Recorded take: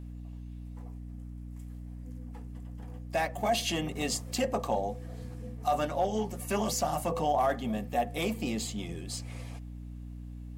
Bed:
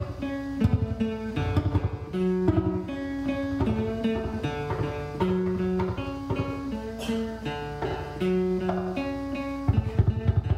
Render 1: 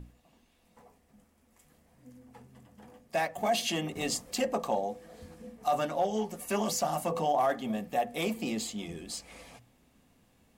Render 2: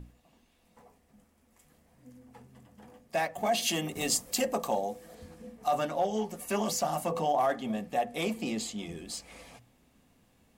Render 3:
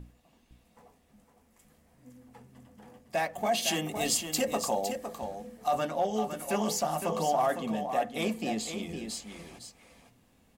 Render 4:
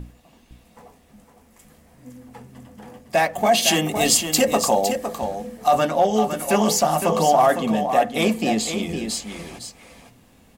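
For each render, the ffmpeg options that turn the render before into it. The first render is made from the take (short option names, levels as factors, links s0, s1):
-af "bandreject=f=60:t=h:w=6,bandreject=f=120:t=h:w=6,bandreject=f=180:t=h:w=6,bandreject=f=240:t=h:w=6,bandreject=f=300:t=h:w=6"
-filter_complex "[0:a]asettb=1/sr,asplit=3[s0][s1][s2];[s0]atrim=end=3.624[s3];[s1]atrim=start=3.62:end=5.15,asetpts=PTS-STARTPTS,afade=t=in:d=0.004:c=qsin,afade=t=out:st=1.526:d=0.004:c=qsin,highshelf=f=7000:g=11[s4];[s2]atrim=start=5.146[s5];[s3][s4]acrossfade=d=0.004:c1=hsin:c2=qsin[s6];[s6][s5]acrossfade=d=0.004:c1=qsin:c2=hsin,asettb=1/sr,asplit=3[s7][s8][s9];[s7]atrim=end=7.484[s10];[s8]atrim=start=7.48:end=8.87,asetpts=PTS-STARTPTS,afade=t=in:d=0.004:c=qsin,afade=t=out:st=1.386:d=0.004:c=qsin,lowpass=12000[s11];[s9]atrim=start=8.866[s12];[s10][s11]acrossfade=d=0.004:c1=hsin:c2=qsin[s13];[s13][s12]acrossfade=d=0.004:c1=qsin:c2=hsin"
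-af "aecho=1:1:509:0.398"
-af "volume=3.55"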